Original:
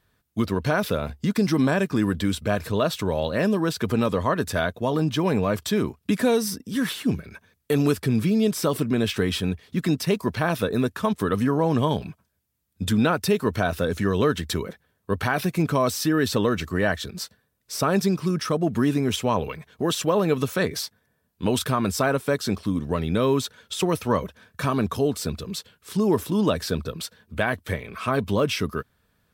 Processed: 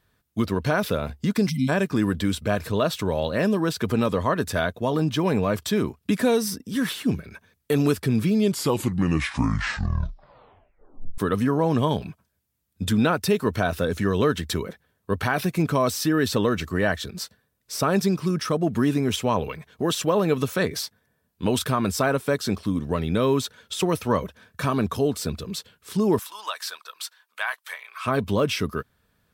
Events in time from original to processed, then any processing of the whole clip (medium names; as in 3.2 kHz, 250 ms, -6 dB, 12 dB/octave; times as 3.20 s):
1.49–1.69 s: spectral selection erased 260–2000 Hz
8.32 s: tape stop 2.86 s
26.19–28.05 s: Chebyshev high-pass 960 Hz, order 3